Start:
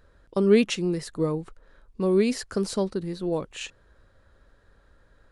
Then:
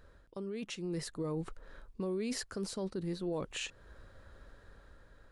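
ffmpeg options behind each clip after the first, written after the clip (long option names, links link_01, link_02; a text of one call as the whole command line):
ffmpeg -i in.wav -af "areverse,acompressor=threshold=-32dB:ratio=5,areverse,alimiter=level_in=8dB:limit=-24dB:level=0:latency=1:release=255,volume=-8dB,dynaudnorm=framelen=250:gausssize=7:maxgain=4.5dB,volume=-1dB" out.wav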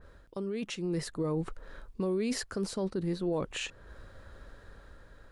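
ffmpeg -i in.wav -af "adynamicequalizer=threshold=0.00178:dfrequency=2700:dqfactor=0.7:tfrequency=2700:tqfactor=0.7:attack=5:release=100:ratio=0.375:range=2:mode=cutabove:tftype=highshelf,volume=5dB" out.wav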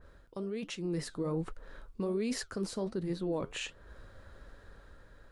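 ffmpeg -i in.wav -af "flanger=delay=2.8:depth=8.5:regen=-76:speed=1.3:shape=triangular,volume=2dB" out.wav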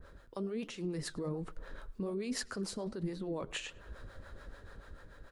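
ffmpeg -i in.wav -filter_complex "[0:a]alimiter=level_in=9dB:limit=-24dB:level=0:latency=1:release=121,volume=-9dB,acrossover=split=440[link_01][link_02];[link_01]aeval=exprs='val(0)*(1-0.7/2+0.7/2*cos(2*PI*6.9*n/s))':channel_layout=same[link_03];[link_02]aeval=exprs='val(0)*(1-0.7/2-0.7/2*cos(2*PI*6.9*n/s))':channel_layout=same[link_04];[link_03][link_04]amix=inputs=2:normalize=0,asplit=2[link_05][link_06];[link_06]adelay=103,lowpass=frequency=4900:poles=1,volume=-23.5dB,asplit=2[link_07][link_08];[link_08]adelay=103,lowpass=frequency=4900:poles=1,volume=0.49,asplit=2[link_09][link_10];[link_10]adelay=103,lowpass=frequency=4900:poles=1,volume=0.49[link_11];[link_05][link_07][link_09][link_11]amix=inputs=4:normalize=0,volume=6dB" out.wav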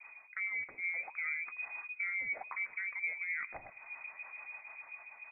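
ffmpeg -i in.wav -af "lowpass=frequency=2100:width_type=q:width=0.5098,lowpass=frequency=2100:width_type=q:width=0.6013,lowpass=frequency=2100:width_type=q:width=0.9,lowpass=frequency=2100:width_type=q:width=2.563,afreqshift=-2500" out.wav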